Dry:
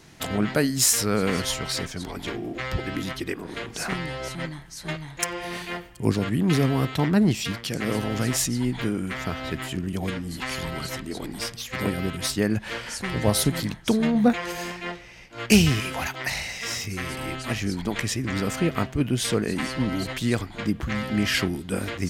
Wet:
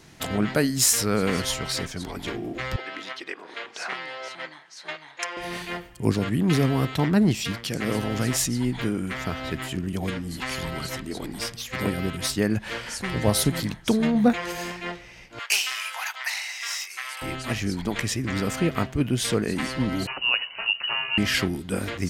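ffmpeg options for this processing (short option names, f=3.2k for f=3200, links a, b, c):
-filter_complex "[0:a]asettb=1/sr,asplit=3[a][b][c];[a]atrim=end=2.764[d];[b]atrim=start=2.76:end=5.37,asetpts=PTS-STARTPTS,afade=t=in:d=0.004:c=qsin,afade=t=out:st=2.606:d=0.004:c=qsin,highpass=600,lowpass=4.9k[e];[c]atrim=start=5.366[f];[d][e]acrossfade=d=0.004:c1=hsin:c2=qsin[g];[g][f]acrossfade=d=0.004:c1=qsin:c2=hsin,asettb=1/sr,asplit=3[h][i][j];[h]atrim=end=15.394[k];[i]atrim=start=15.39:end=17.22,asetpts=PTS-STARTPTS,afade=t=in:d=0.004:c=qsin,afade=t=out:st=1.826:d=0.004:c=qsin,highpass=f=880:w=0.5412,highpass=f=880:w=1.3066[l];[j]atrim=start=17.216[m];[k][l]acrossfade=d=0.004:c1=hsin:c2=qsin[n];[n][m]acrossfade=d=0.004:c1=qsin:c2=hsin,asettb=1/sr,asplit=3[o][p][q];[o]atrim=end=20.074[r];[p]atrim=start=20.07:end=21.18,asetpts=PTS-STARTPTS,afade=t=in:d=0.004:c=qsin,afade=t=out:st=1.106:d=0.004:c=qsin,lowpass=f=2.6k:t=q:w=0.5098,lowpass=f=2.6k:t=q:w=0.6013,lowpass=f=2.6k:t=q:w=0.9,lowpass=f=2.6k:t=q:w=2.563,afreqshift=-3000[s];[q]atrim=start=21.176[t];[r][s]acrossfade=d=0.004:c1=hsin:c2=qsin[u];[u][t]acrossfade=d=0.004:c1=qsin:c2=hsin"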